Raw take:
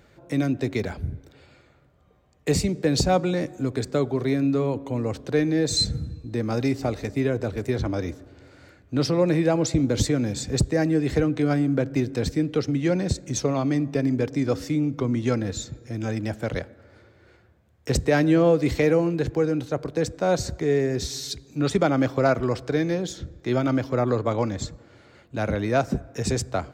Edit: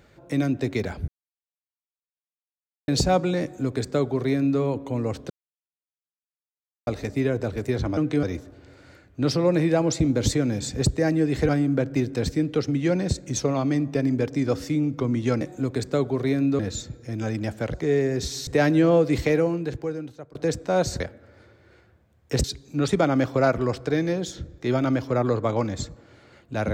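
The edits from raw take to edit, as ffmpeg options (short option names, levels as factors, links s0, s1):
-filter_complex "[0:a]asplit=15[s0][s1][s2][s3][s4][s5][s6][s7][s8][s9][s10][s11][s12][s13][s14];[s0]atrim=end=1.08,asetpts=PTS-STARTPTS,afade=t=out:st=1.076:d=0.004:c=hsin[s15];[s1]atrim=start=1.08:end=2.88,asetpts=PTS-STARTPTS,volume=0[s16];[s2]atrim=start=2.88:end=5.3,asetpts=PTS-STARTPTS,afade=t=in:d=0.004:c=hsin,afade=t=out:st=2.416:d=0.004:c=hsin[s17];[s3]atrim=start=5.3:end=6.87,asetpts=PTS-STARTPTS,volume=0[s18];[s4]atrim=start=6.87:end=7.972,asetpts=PTS-STARTPTS,afade=t=in:d=0.004:c=hsin[s19];[s5]atrim=start=11.228:end=11.492[s20];[s6]atrim=start=7.968:end=11.232[s21];[s7]atrim=start=11.488:end=15.412[s22];[s8]atrim=start=3.418:end=4.602[s23];[s9]atrim=start=15.408:end=16.562[s24];[s10]atrim=start=20.528:end=21.262[s25];[s11]atrim=start=17.998:end=19.88,asetpts=PTS-STARTPTS,afade=t=out:st=0.722:d=1.16:silence=0.0891251[s26];[s12]atrim=start=19.88:end=20.532,asetpts=PTS-STARTPTS,afade=t=in:d=0.004:c=hsin:silence=0.0891251[s27];[s13]atrim=start=16.558:end=18.002[s28];[s14]atrim=start=21.258[s29];[s15][s16][s17][s18][s19]concat=n=5:v=0:a=1[s30];[s30][s20]acrossfade=d=0.004:c1=hsin:c2=hsin[s31];[s31][s21]acrossfade=d=0.004:c1=hsin:c2=hsin[s32];[s32][s22]acrossfade=d=0.004:c1=hsin:c2=hsin[s33];[s33][s23]acrossfade=d=0.004:c1=hsin:c2=hsin[s34];[s34][s24]acrossfade=d=0.004:c1=hsin:c2=hsin[s35];[s35][s25]acrossfade=d=0.004:c1=hsin:c2=hsin[s36];[s26][s27]concat=n=2:v=0:a=1[s37];[s36][s37]acrossfade=d=0.004:c1=hsin:c2=hsin[s38];[s38][s28]acrossfade=d=0.004:c1=hsin:c2=hsin[s39];[s39][s29]acrossfade=d=0.004:c1=hsin:c2=hsin"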